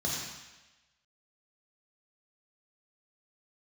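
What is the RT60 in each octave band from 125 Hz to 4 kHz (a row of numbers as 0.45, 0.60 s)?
0.90, 1.0, 1.1, 1.1, 1.2, 1.2 s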